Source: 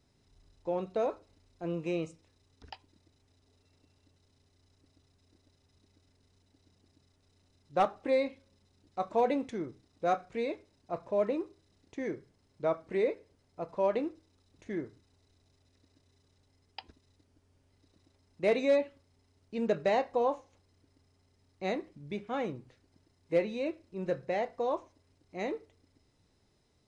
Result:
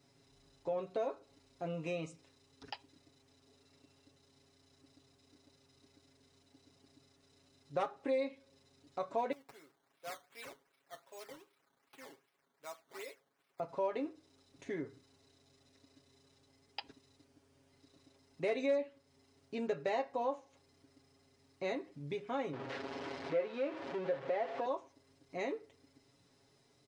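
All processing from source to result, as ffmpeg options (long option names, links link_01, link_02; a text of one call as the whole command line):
ffmpeg -i in.wav -filter_complex "[0:a]asettb=1/sr,asplit=3[link_01][link_02][link_03];[link_01]atrim=end=9.324[link_04];[link_02]atrim=start=9.32:end=13.6,asetpts=PTS-STARTPTS,afade=type=in:duration=0.004:curve=qsin,afade=type=out:start_time=4.276:duration=0.004:curve=qsin,aderivative,acrusher=samples=12:mix=1:aa=0.000001:lfo=1:lforange=12:lforate=2.6[link_05];[link_03]atrim=start=13.596[link_06];[link_04][link_05]acrossfade=duration=0.004:curve1=hsin:curve2=qsin[link_07];[link_07][link_06]acrossfade=duration=0.004:curve1=qsin:curve2=hsin,asettb=1/sr,asplit=3[link_08][link_09][link_10];[link_08]atrim=end=22.534[link_11];[link_09]atrim=start=22.53:end=24.66,asetpts=PTS-STARTPTS,afade=type=in:duration=0.004:curve=qsin,afade=type=out:start_time=2.126:duration=0.004:curve=qsin,aeval=exprs='val(0)+0.5*0.02*sgn(val(0))':channel_layout=same,highpass=460,lowpass=4300,aemphasis=mode=reproduction:type=riaa[link_12];[link_10]atrim=start=24.656[link_13];[link_11][link_12]acrossfade=duration=0.004:curve1=hsin:curve2=qsin[link_14];[link_14][link_13]acrossfade=duration=0.004:curve1=qsin:curve2=hsin,highpass=frequency=190:poles=1,aecho=1:1:7.3:0.79,acompressor=threshold=-42dB:ratio=2,volume=2dB" out.wav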